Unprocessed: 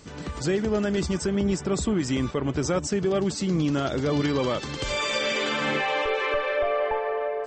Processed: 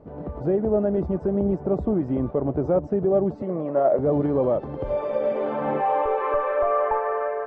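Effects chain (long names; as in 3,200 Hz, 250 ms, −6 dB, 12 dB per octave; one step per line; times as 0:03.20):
low-pass filter sweep 670 Hz → 1,400 Hz, 0:05.23–0:07.30
0:03.42–0:03.99: loudspeaker in its box 260–5,600 Hz, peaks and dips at 290 Hz −7 dB, 590 Hz +8 dB, 1,100 Hz +6 dB, 1,900 Hz +9 dB, 3,400 Hz −4 dB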